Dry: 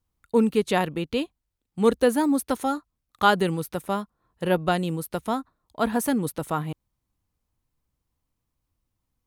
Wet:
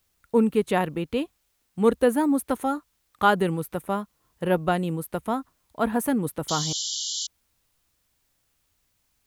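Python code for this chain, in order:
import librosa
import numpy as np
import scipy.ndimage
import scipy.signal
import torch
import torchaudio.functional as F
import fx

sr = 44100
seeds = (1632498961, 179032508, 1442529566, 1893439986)

y = fx.peak_eq(x, sr, hz=5000.0, db=-9.5, octaves=1.2)
y = fx.spec_paint(y, sr, seeds[0], shape='noise', start_s=6.48, length_s=0.79, low_hz=2900.0, high_hz=7500.0, level_db=-30.0)
y = fx.quant_dither(y, sr, seeds[1], bits=12, dither='triangular')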